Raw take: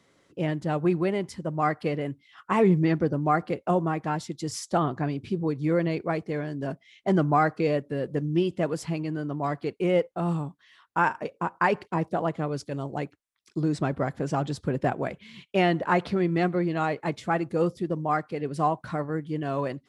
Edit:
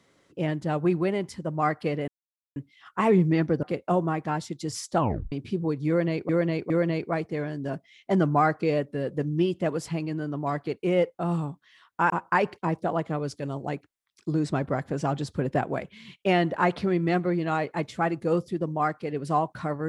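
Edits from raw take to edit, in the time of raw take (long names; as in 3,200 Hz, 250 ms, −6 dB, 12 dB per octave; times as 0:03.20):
0:02.08: splice in silence 0.48 s
0:03.15–0:03.42: remove
0:04.77: tape stop 0.34 s
0:05.67–0:06.08: repeat, 3 plays
0:11.07–0:11.39: remove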